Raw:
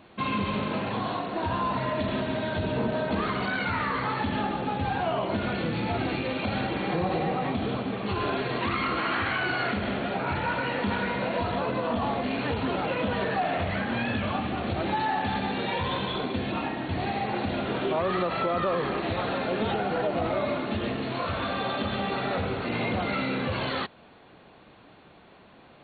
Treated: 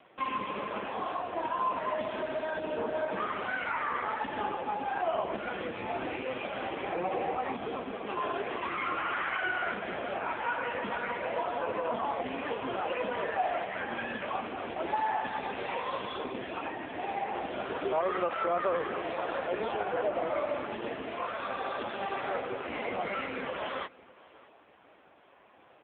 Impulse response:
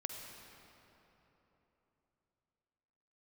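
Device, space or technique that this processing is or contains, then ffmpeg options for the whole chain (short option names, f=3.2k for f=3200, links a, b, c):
satellite phone: -af "highpass=370,lowpass=3.2k,aecho=1:1:614:0.0708" -ar 8000 -c:a libopencore_amrnb -b:a 5900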